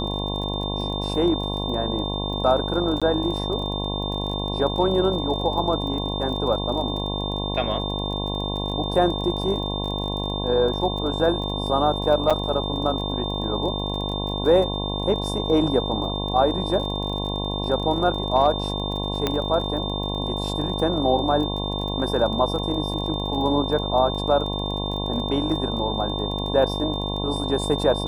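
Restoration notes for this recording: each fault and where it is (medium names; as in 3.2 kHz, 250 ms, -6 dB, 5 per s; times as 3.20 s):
buzz 50 Hz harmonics 22 -28 dBFS
crackle 27 per s -31 dBFS
whine 3.6 kHz -30 dBFS
3.00–3.02 s: dropout
12.30–12.31 s: dropout 5.8 ms
19.27 s: pop -8 dBFS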